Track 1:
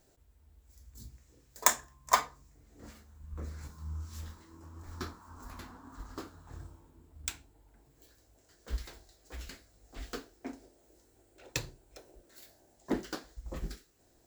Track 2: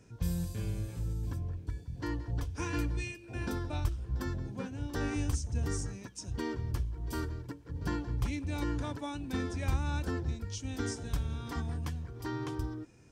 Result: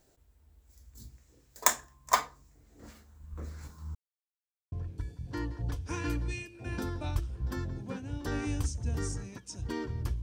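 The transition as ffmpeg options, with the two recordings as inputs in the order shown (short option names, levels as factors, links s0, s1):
-filter_complex "[0:a]apad=whole_dur=10.22,atrim=end=10.22,asplit=2[s0][s1];[s0]atrim=end=3.95,asetpts=PTS-STARTPTS,afade=t=out:st=3.946:d=0.004:c=hsin[s2];[s1]atrim=start=3.95:end=4.72,asetpts=PTS-STARTPTS,volume=0[s3];[1:a]atrim=start=1.41:end=6.91,asetpts=PTS-STARTPTS,afade=t=in:d=0.004:c=hsin[s4];[s2][s3][s4]concat=n=3:v=0:a=1"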